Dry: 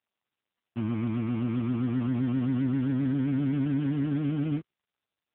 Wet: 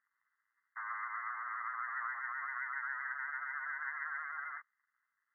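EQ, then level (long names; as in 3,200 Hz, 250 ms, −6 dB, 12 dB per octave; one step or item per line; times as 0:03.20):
Butterworth high-pass 1,200 Hz 36 dB per octave
linear-phase brick-wall low-pass 2,100 Hz
+12.5 dB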